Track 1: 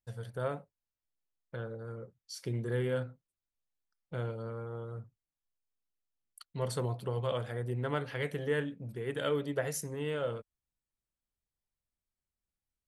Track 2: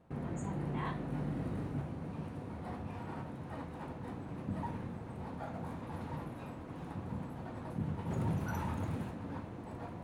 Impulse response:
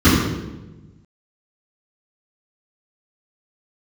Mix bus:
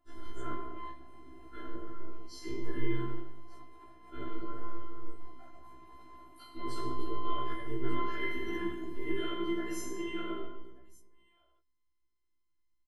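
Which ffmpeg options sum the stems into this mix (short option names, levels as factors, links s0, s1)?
-filter_complex "[0:a]equalizer=f=220:w=2:g=-11,acompressor=threshold=0.02:ratio=6,volume=0.335,asplit=3[s0][s1][s2];[s1]volume=0.531[s3];[s2]volume=0.335[s4];[1:a]asoftclip=type=tanh:threshold=0.0355,volume=0.794[s5];[2:a]atrim=start_sample=2205[s6];[s3][s6]afir=irnorm=-1:irlink=0[s7];[s4]aecho=0:1:1194:1[s8];[s0][s5][s7][s8]amix=inputs=4:normalize=0,afftfilt=real='hypot(re,im)*cos(PI*b)':imag='0':win_size=512:overlap=0.75,afftfilt=real='re*1.73*eq(mod(b,3),0)':imag='im*1.73*eq(mod(b,3),0)':win_size=2048:overlap=0.75"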